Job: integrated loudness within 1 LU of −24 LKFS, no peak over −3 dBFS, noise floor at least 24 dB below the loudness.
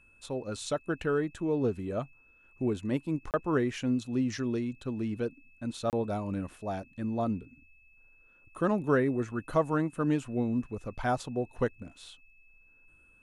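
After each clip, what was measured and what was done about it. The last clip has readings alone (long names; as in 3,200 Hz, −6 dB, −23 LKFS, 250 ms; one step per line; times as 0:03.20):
number of dropouts 2; longest dropout 28 ms; interfering tone 2,600 Hz; level of the tone −60 dBFS; integrated loudness −32.0 LKFS; sample peak −14.0 dBFS; target loudness −24.0 LKFS
→ repair the gap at 0:03.31/0:05.90, 28 ms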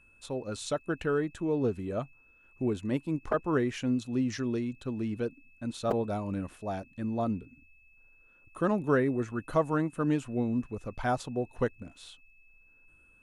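number of dropouts 0; interfering tone 2,600 Hz; level of the tone −60 dBFS
→ notch filter 2,600 Hz, Q 30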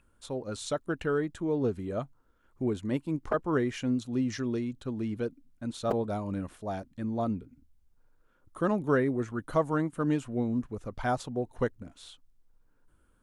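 interfering tone none found; integrated loudness −32.0 LKFS; sample peak −13.5 dBFS; target loudness −24.0 LKFS
→ level +8 dB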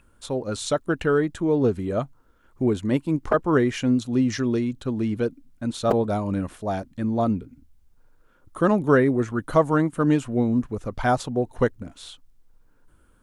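integrated loudness −24.0 LKFS; sample peak −5.5 dBFS; background noise floor −58 dBFS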